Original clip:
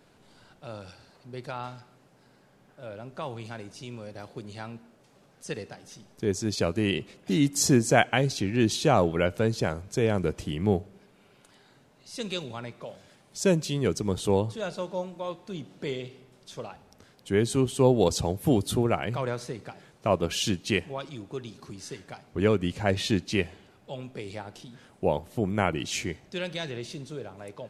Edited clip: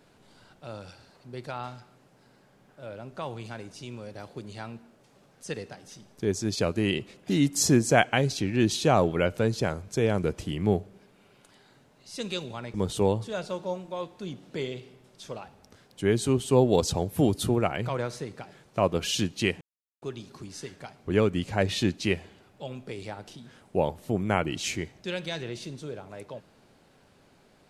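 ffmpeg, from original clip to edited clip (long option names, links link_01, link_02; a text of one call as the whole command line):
ffmpeg -i in.wav -filter_complex "[0:a]asplit=4[link_01][link_02][link_03][link_04];[link_01]atrim=end=12.742[link_05];[link_02]atrim=start=14.018:end=20.89,asetpts=PTS-STARTPTS,afade=type=out:start_time=6.868:duration=0.004:curve=hsin[link_06];[link_03]atrim=start=20.89:end=21.3,asetpts=PTS-STARTPTS,volume=0[link_07];[link_04]atrim=start=21.3,asetpts=PTS-STARTPTS,afade=type=in:duration=0.004:curve=hsin[link_08];[link_06][link_07][link_08]concat=n=3:v=0:a=1[link_09];[link_05][link_09]acrossfade=duration=0.004:curve1=hsin:curve2=hsin" out.wav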